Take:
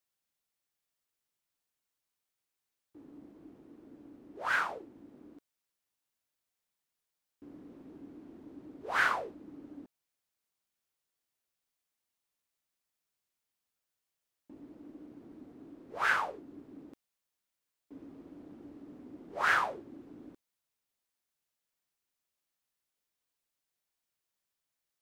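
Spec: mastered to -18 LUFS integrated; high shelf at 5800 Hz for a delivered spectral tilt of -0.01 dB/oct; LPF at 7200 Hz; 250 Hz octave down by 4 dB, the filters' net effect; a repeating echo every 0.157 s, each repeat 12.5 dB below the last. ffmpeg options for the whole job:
-af "lowpass=7.2k,equalizer=f=250:t=o:g=-5,highshelf=f=5.8k:g=-5,aecho=1:1:157|314|471:0.237|0.0569|0.0137,volume=14dB"

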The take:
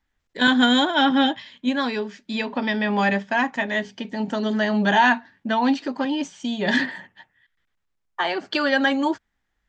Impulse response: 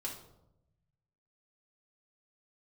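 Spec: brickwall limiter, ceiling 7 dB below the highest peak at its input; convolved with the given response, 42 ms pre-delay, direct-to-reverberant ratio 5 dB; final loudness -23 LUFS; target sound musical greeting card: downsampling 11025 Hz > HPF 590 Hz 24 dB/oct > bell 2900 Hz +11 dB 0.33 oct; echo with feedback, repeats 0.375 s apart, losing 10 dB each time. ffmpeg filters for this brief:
-filter_complex "[0:a]alimiter=limit=-12.5dB:level=0:latency=1,aecho=1:1:375|750|1125|1500:0.316|0.101|0.0324|0.0104,asplit=2[a][b];[1:a]atrim=start_sample=2205,adelay=42[c];[b][c]afir=irnorm=-1:irlink=0,volume=-5dB[d];[a][d]amix=inputs=2:normalize=0,aresample=11025,aresample=44100,highpass=f=590:w=0.5412,highpass=f=590:w=1.3066,equalizer=f=2.9k:t=o:w=0.33:g=11,volume=-0.5dB"

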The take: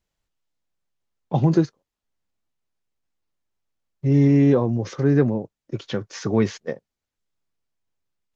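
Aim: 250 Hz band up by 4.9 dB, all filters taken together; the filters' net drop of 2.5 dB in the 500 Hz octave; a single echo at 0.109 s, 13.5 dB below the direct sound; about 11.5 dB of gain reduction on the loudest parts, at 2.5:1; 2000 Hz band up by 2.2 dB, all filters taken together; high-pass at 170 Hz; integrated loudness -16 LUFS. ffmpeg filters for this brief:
-af "highpass=170,equalizer=f=250:t=o:g=9,equalizer=f=500:t=o:g=-7,equalizer=f=2k:t=o:g=3,acompressor=threshold=-27dB:ratio=2.5,aecho=1:1:109:0.211,volume=12.5dB"

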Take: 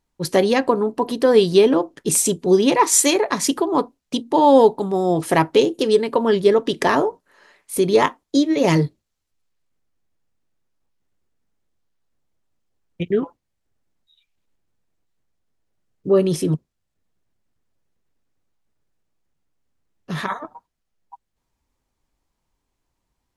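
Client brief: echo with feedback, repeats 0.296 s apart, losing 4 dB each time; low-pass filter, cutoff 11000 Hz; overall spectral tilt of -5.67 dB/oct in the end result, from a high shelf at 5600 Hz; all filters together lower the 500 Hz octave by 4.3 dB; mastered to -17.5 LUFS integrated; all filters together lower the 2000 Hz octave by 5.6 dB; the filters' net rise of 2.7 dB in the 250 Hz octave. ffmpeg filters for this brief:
-af "lowpass=11k,equalizer=f=250:t=o:g=6,equalizer=f=500:t=o:g=-7.5,equalizer=f=2k:t=o:g=-5.5,highshelf=f=5.6k:g=-8,aecho=1:1:296|592|888|1184|1480|1776|2072|2368|2664:0.631|0.398|0.25|0.158|0.0994|0.0626|0.0394|0.0249|0.0157,volume=1dB"

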